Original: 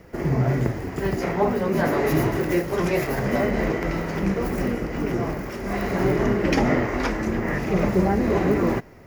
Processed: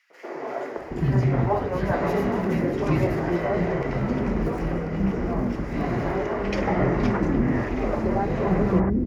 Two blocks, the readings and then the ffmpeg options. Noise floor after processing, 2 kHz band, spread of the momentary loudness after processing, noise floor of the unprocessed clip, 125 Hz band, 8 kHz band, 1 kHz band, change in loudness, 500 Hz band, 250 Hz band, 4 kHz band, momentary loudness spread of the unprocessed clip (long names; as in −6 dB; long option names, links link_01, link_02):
−35 dBFS, −4.5 dB, 6 LU, −34 dBFS, +0.5 dB, below −10 dB, −0.5 dB, −1.5 dB, −2.0 dB, −1.0 dB, −6.0 dB, 6 LU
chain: -filter_complex "[0:a]aemphasis=mode=reproduction:type=75fm,acrossover=split=390|1900[link_01][link_02][link_03];[link_02]adelay=100[link_04];[link_01]adelay=770[link_05];[link_05][link_04][link_03]amix=inputs=3:normalize=0"